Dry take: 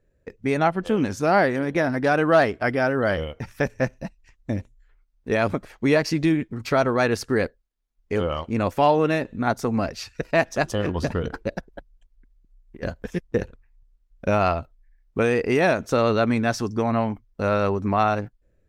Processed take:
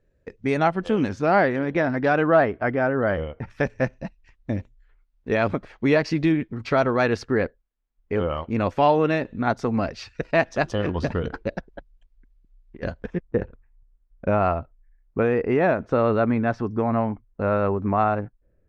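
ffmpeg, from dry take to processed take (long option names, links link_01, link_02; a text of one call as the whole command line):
ffmpeg -i in.wav -af "asetnsamples=nb_out_samples=441:pad=0,asendcmd='1.09 lowpass f 3500;2.27 lowpass f 1900;3.5 lowpass f 4100;7.24 lowpass f 2500;8.5 lowpass f 4300;13.06 lowpass f 1700',lowpass=6400" out.wav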